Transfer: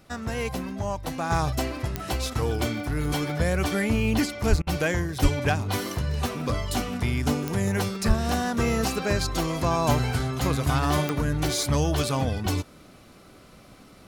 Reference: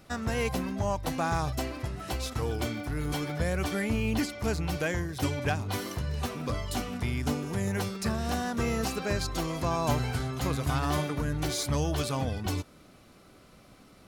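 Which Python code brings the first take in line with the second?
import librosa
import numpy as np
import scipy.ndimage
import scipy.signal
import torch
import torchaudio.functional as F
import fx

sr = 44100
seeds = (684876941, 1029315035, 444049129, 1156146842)

y = fx.fix_declick_ar(x, sr, threshold=10.0)
y = fx.highpass(y, sr, hz=140.0, slope=24, at=(4.49, 4.61), fade=0.02)
y = fx.highpass(y, sr, hz=140.0, slope=24, at=(5.22, 5.34), fade=0.02)
y = fx.highpass(y, sr, hz=140.0, slope=24, at=(8.07, 8.19), fade=0.02)
y = fx.fix_interpolate(y, sr, at_s=(4.62,), length_ms=47.0)
y = fx.fix_level(y, sr, at_s=1.3, step_db=-5.0)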